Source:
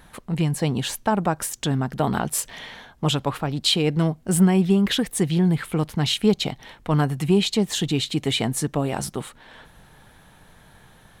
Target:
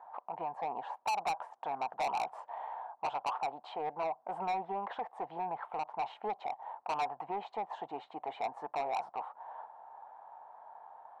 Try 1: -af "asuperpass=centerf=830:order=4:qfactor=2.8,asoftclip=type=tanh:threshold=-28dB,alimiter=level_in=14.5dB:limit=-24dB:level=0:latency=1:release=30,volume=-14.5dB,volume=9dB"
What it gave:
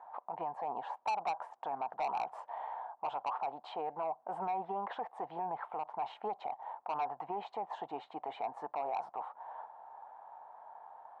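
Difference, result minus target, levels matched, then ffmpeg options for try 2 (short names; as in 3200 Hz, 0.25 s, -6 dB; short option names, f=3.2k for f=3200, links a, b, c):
soft clip: distortion -5 dB
-af "asuperpass=centerf=830:order=4:qfactor=2.8,asoftclip=type=tanh:threshold=-35dB,alimiter=level_in=14.5dB:limit=-24dB:level=0:latency=1:release=30,volume=-14.5dB,volume=9dB"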